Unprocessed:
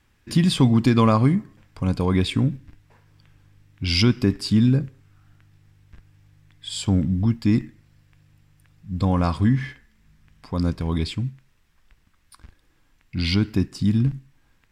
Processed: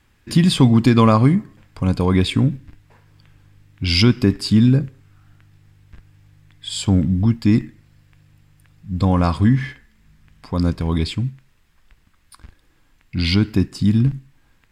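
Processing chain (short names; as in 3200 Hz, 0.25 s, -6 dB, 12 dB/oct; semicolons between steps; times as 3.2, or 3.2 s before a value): notch 5700 Hz, Q 19; gain +4 dB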